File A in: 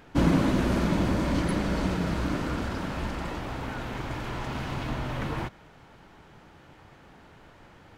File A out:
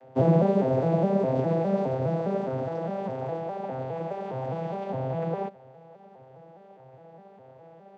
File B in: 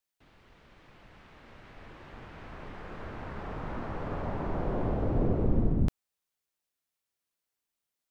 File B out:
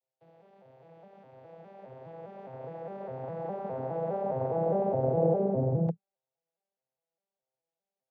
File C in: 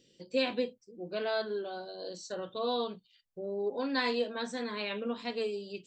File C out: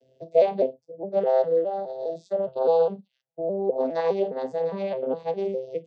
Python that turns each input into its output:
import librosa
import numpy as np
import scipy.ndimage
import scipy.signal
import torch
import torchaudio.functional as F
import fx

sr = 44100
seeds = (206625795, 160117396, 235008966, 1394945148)

y = fx.vocoder_arp(x, sr, chord='major triad', root=48, every_ms=205)
y = fx.band_shelf(y, sr, hz=620.0, db=15.0, octaves=1.2)